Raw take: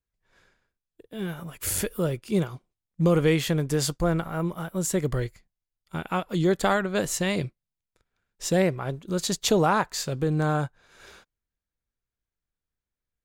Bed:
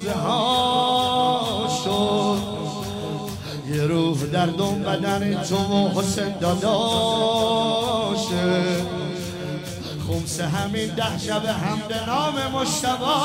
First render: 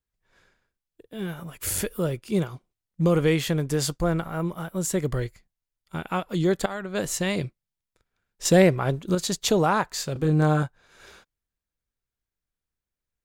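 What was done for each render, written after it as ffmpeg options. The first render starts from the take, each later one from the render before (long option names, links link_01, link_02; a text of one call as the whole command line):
ffmpeg -i in.wav -filter_complex "[0:a]asettb=1/sr,asplit=3[link_01][link_02][link_03];[link_01]atrim=end=8.454[link_04];[link_02]atrim=start=8.45:end=9.15,asetpts=PTS-STARTPTS,afade=type=in:duration=0.004:curve=qsin,afade=type=out:start_time=0.696:duration=0.004:curve=qsin,acontrast=51[link_05];[link_03]atrim=start=9.146[link_06];[link_04][link_05]acrossfade=duration=0.004:curve1=hsin:curve2=qsin[link_07];[link_07][link_06]acrossfade=duration=0.004:curve1=qsin:curve2=hsin,asettb=1/sr,asplit=3[link_08][link_09][link_10];[link_08]atrim=end=10.134[link_11];[link_09]atrim=start=10.13:end=10.63,asetpts=PTS-STARTPTS,afade=type=in:duration=0.004:curve=qsin,afade=type=out:start_time=0.496:duration=0.004:curve=qsin,asplit=2[link_12][link_13];[link_13]adelay=26,volume=-3dB[link_14];[link_12][link_14]amix=inputs=2:normalize=0,atrim=end_sample=22050[link_15];[link_10]atrim=start=10.626[link_16];[link_11][link_15]acrossfade=duration=0.004:curve1=hsin:curve2=qsin[link_17];[link_17][link_16]acrossfade=duration=0.004:curve1=qsin:curve2=hsin,asplit=2[link_18][link_19];[link_18]atrim=end=6.66,asetpts=PTS-STARTPTS,afade=type=out:start_time=6.656:duration=0.004:curve=hsin:silence=0.149624[link_20];[link_19]atrim=start=6.66,asetpts=PTS-STARTPTS,afade=type=in:duration=0.42:silence=0.149624[link_21];[link_20][link_21]concat=n=2:v=0:a=1" out.wav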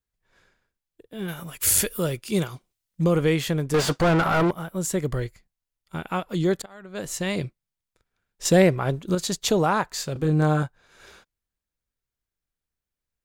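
ffmpeg -i in.wav -filter_complex "[0:a]asettb=1/sr,asplit=3[link_01][link_02][link_03];[link_01]atrim=end=1.284[link_04];[link_02]atrim=start=1.28:end=3.04,asetpts=PTS-STARTPTS,afade=type=in:duration=0.004:curve=qsin,afade=type=out:start_time=1.756:duration=0.004:curve=qsin,highshelf=frequency=2000:gain=9[link_05];[link_03]atrim=start=3.036[link_06];[link_04][link_05]acrossfade=duration=0.004:curve1=hsin:curve2=qsin[link_07];[link_07][link_06]acrossfade=duration=0.004:curve1=qsin:curve2=hsin,asettb=1/sr,asplit=3[link_08][link_09][link_10];[link_08]atrim=end=3.744[link_11];[link_09]atrim=start=3.74:end=4.51,asetpts=PTS-STARTPTS,afade=type=in:duration=0.004:curve=qsin,afade=type=out:start_time=0.766:duration=0.004:curve=qsin,asplit=2[link_12][link_13];[link_13]highpass=frequency=720:poles=1,volume=31dB,asoftclip=type=tanh:threshold=-12dB[link_14];[link_12][link_14]amix=inputs=2:normalize=0,lowpass=frequency=1900:poles=1,volume=-6dB[link_15];[link_10]atrim=start=4.506[link_16];[link_11][link_15]acrossfade=duration=0.004:curve1=hsin:curve2=qsin[link_17];[link_17][link_16]acrossfade=duration=0.004:curve1=qsin:curve2=hsin,asplit=2[link_18][link_19];[link_18]atrim=end=6.62,asetpts=PTS-STARTPTS,afade=type=out:start_time=6.616:duration=0.004:curve=hsin:silence=0.0891251[link_20];[link_19]atrim=start=6.62,asetpts=PTS-STARTPTS,afade=type=in:duration=0.74:silence=0.0891251[link_21];[link_20][link_21]concat=n=2:v=0:a=1" out.wav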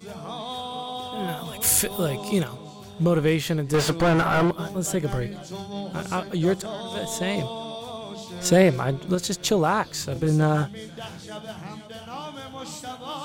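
ffmpeg -i in.wav -i bed.wav -filter_complex "[1:a]volume=-13.5dB[link_01];[0:a][link_01]amix=inputs=2:normalize=0" out.wav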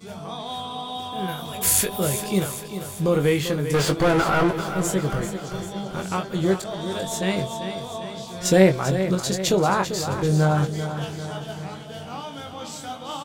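ffmpeg -i in.wav -filter_complex "[0:a]asplit=2[link_01][link_02];[link_02]adelay=21,volume=-6.5dB[link_03];[link_01][link_03]amix=inputs=2:normalize=0,aecho=1:1:393|786|1179|1572|1965|2358:0.316|0.177|0.0992|0.0555|0.0311|0.0174" out.wav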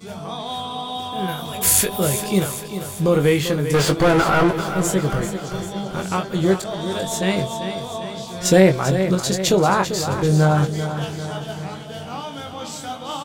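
ffmpeg -i in.wav -af "volume=3.5dB,alimiter=limit=-2dB:level=0:latency=1" out.wav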